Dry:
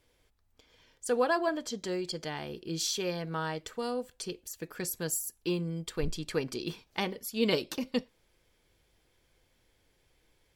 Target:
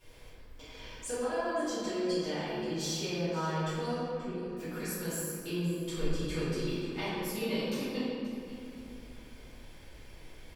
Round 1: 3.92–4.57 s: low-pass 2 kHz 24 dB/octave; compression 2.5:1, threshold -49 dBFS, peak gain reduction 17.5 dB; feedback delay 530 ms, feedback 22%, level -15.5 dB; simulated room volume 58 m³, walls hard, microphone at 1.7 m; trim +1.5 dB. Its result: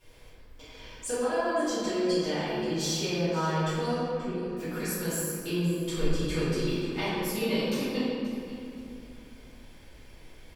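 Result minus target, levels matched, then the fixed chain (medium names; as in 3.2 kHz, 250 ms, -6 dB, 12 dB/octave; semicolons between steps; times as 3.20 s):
compression: peak gain reduction -5 dB
3.92–4.57 s: low-pass 2 kHz 24 dB/octave; compression 2.5:1, threshold -57 dBFS, peak gain reduction 22 dB; feedback delay 530 ms, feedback 22%, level -15.5 dB; simulated room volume 58 m³, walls hard, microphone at 1.7 m; trim +1.5 dB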